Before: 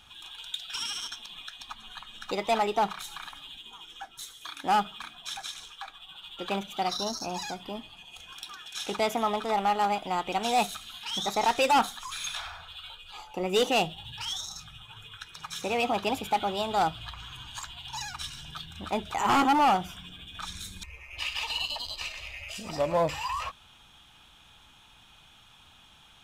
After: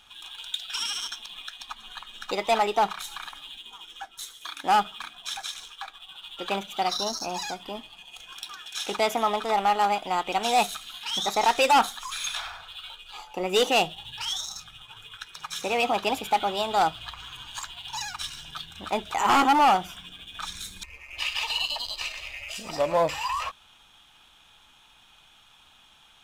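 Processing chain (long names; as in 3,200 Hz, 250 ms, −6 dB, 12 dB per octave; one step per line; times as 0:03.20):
parametric band 93 Hz −8.5 dB 2.9 octaves
in parallel at −4.5 dB: dead-zone distortion −50.5 dBFS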